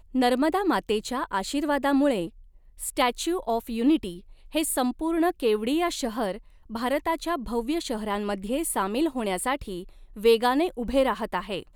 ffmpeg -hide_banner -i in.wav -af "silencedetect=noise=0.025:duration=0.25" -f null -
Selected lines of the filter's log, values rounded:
silence_start: 2.27
silence_end: 2.81 | silence_duration: 0.54
silence_start: 4.18
silence_end: 4.55 | silence_duration: 0.37
silence_start: 6.37
silence_end: 6.72 | silence_duration: 0.35
silence_start: 9.83
silence_end: 10.17 | silence_duration: 0.34